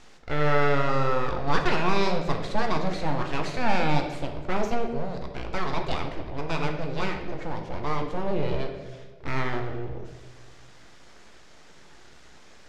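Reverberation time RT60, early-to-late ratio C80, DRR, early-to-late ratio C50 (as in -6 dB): 1.4 s, 9.0 dB, 3.5 dB, 7.0 dB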